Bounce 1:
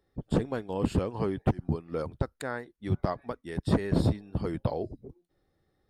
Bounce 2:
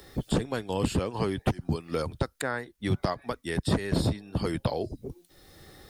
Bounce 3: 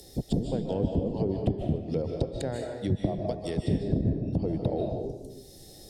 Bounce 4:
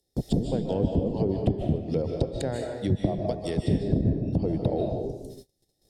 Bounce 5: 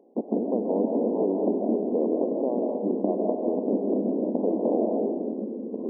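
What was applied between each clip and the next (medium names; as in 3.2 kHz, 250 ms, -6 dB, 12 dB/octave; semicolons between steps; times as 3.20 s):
treble shelf 2.1 kHz +12 dB; three bands compressed up and down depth 70%
FFT filter 710 Hz 0 dB, 1.2 kHz -21 dB, 5.5 kHz +7 dB; low-pass that closes with the level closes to 340 Hz, closed at -21.5 dBFS; reverberation RT60 0.95 s, pre-delay 110 ms, DRR 2 dB
gate -44 dBFS, range -30 dB; trim +2.5 dB
spectral levelling over time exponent 0.6; ever faster or slower copies 566 ms, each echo -3 st, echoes 3, each echo -6 dB; brick-wall FIR band-pass 200–1100 Hz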